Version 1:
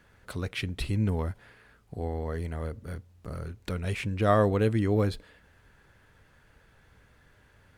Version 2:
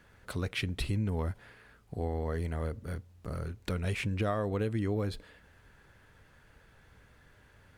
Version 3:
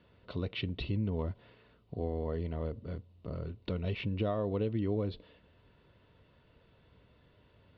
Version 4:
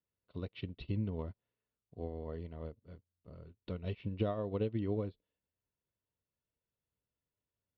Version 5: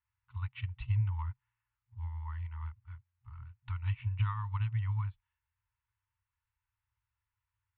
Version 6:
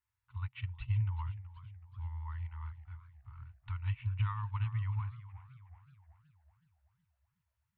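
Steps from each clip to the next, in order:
compressor 12:1, threshold -27 dBFS, peak gain reduction 10.5 dB
steep low-pass 4100 Hz 36 dB/oct; band shelf 1600 Hz -8.5 dB 1.1 oct; notch comb 820 Hz
upward expander 2.5:1, over -50 dBFS; gain +1 dB
LPF 2500 Hz 24 dB/oct; FFT band-reject 120–800 Hz; gain +8 dB
warbling echo 0.373 s, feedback 50%, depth 150 cents, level -14.5 dB; gain -1.5 dB

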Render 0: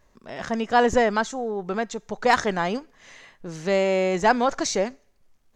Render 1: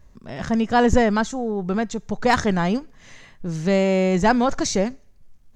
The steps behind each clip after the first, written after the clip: tone controls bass +13 dB, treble +2 dB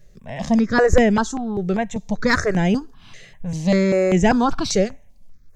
step phaser 5.1 Hz 260–4300 Hz; gain +4.5 dB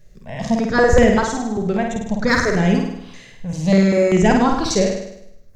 flutter echo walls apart 8.8 m, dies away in 0.78 s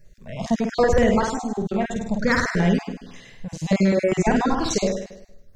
random spectral dropouts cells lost 22%; maximiser +5 dB; gain -7.5 dB

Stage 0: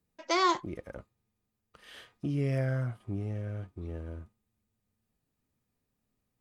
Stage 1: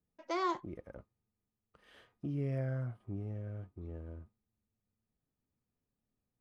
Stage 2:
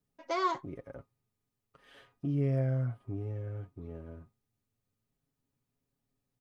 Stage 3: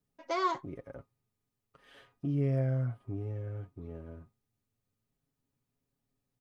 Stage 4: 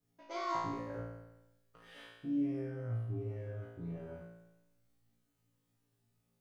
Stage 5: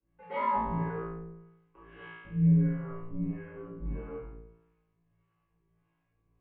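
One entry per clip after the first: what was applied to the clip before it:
high shelf 2100 Hz -11.5 dB; gain -5.5 dB
comb 7.3 ms, depth 63%; gain +2 dB
nothing audible
reverse; compressor 4:1, threshold -40 dBFS, peak gain reduction 13 dB; reverse; flange 0.45 Hz, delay 2.4 ms, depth 9.2 ms, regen -66%; flutter echo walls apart 3 m, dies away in 1 s; gain +2.5 dB
harmonic tremolo 1.6 Hz, depth 70%, crossover 650 Hz; reverb RT60 0.55 s, pre-delay 8 ms, DRR -4.5 dB; mistuned SSB -120 Hz 190–2700 Hz; gain +3 dB

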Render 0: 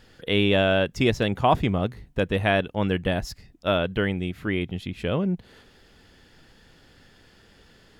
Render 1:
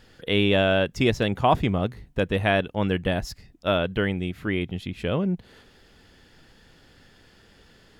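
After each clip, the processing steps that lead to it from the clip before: nothing audible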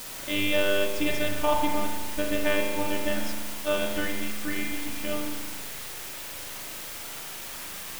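robotiser 297 Hz; requantised 6-bit, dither triangular; spring tank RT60 1.6 s, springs 38 ms, chirp 80 ms, DRR -1 dB; gain -3 dB

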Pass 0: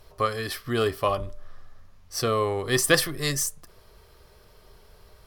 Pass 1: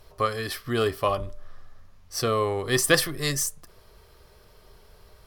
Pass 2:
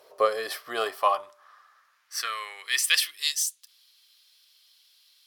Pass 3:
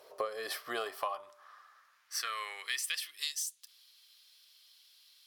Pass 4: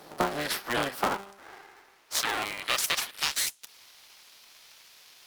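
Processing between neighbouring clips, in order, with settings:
nothing audible
high-pass sweep 500 Hz -> 3500 Hz, 0.24–3.44; gain -1.5 dB
compressor 8:1, threshold -31 dBFS, peak gain reduction 15 dB; gain -1.5 dB
cycle switcher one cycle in 3, inverted; gain +8 dB

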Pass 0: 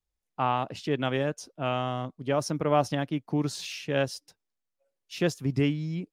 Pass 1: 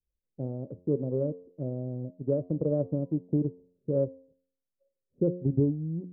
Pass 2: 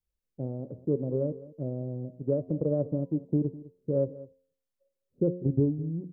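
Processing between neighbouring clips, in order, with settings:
Chebyshev low-pass 570 Hz, order 6; transient shaper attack +3 dB, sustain -3 dB; de-hum 89.19 Hz, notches 13
echo 0.204 s -18 dB

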